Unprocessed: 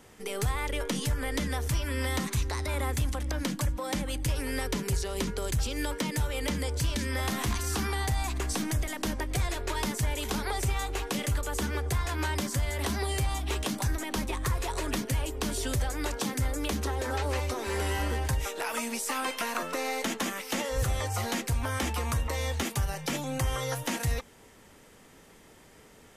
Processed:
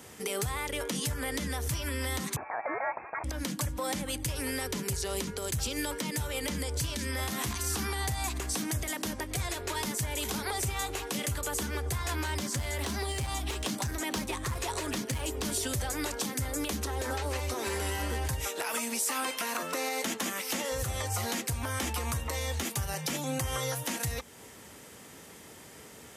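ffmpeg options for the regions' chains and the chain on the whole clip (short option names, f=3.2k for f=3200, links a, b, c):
-filter_complex "[0:a]asettb=1/sr,asplit=3[a][b][c];[a]atrim=end=2.364[d];[b]atrim=start=2.36:end=3.24,asetpts=PTS-STARTPTS,afade=t=in:d=0.004:c=qsin,afade=t=out:st=0.876:d=0.004:c=qsin,highpass=670,equalizer=f=1.9k:t=o:w=0.85:g=15,lowpass=f=2.3k:t=q:w=0.5098,lowpass=f=2.3k:t=q:w=0.6013,lowpass=f=2.3k:t=q:w=0.9,lowpass=f=2.3k:t=q:w=2.563,afreqshift=-2700[e];[c]atrim=start=3.236[f];[d][e]acrossfade=d=0.004:c1=hsin:c2=qsin[g];[g][f]acrossfade=d=0.004:c1=qsin:c2=hsin,asettb=1/sr,asplit=3[h][i][j];[h]atrim=end=12.244[k];[i]atrim=start=12.24:end=15.45,asetpts=PTS-STARTPTS,afade=t=in:d=0.004:c=qsin,afade=t=out:st=3.206:d=0.004:c=qsin,acrossover=split=8200[l][m];[m]acompressor=threshold=-47dB:ratio=4:attack=1:release=60[n];[l][n]amix=inputs=2:normalize=0,asoftclip=type=hard:threshold=-24dB[o];[j]atrim=start=15.446[p];[k][o]acrossfade=d=0.004:c1=hsin:c2=qsin[q];[q][p]acrossfade=d=0.004:c1=qsin:c2=hsin,highpass=f=63:w=0.5412,highpass=f=63:w=1.3066,alimiter=level_in=4dB:limit=-24dB:level=0:latency=1:release=325,volume=-4dB,highshelf=f=4.7k:g=6.5,volume=4dB"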